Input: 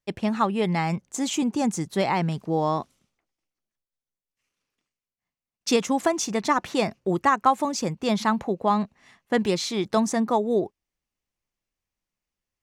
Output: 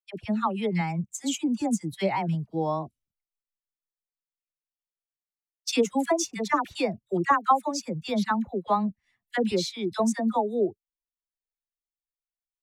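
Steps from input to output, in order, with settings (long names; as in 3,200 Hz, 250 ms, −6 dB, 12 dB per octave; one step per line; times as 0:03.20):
spectral dynamics exaggerated over time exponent 1.5
all-pass dispersion lows, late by 65 ms, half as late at 930 Hz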